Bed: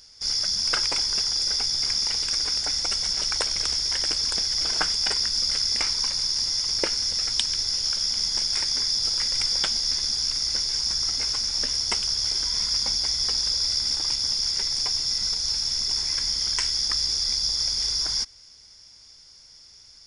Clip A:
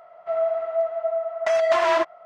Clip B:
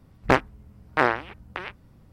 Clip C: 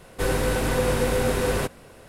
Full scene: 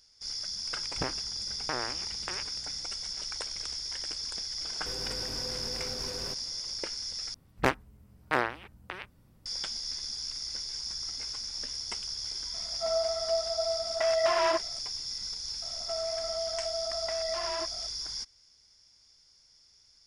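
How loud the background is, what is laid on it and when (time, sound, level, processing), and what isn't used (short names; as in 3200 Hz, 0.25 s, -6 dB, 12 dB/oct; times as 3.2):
bed -11.5 dB
0.72 add B -5.5 dB + compressor, threshold -22 dBFS
4.67 add C -12.5 dB + limiter -20.5 dBFS
7.34 replace with B -7.5 dB + high shelf 4400 Hz +10 dB
12.54 add A -6.5 dB
15.62 add A -3 dB + compressor, threshold -30 dBFS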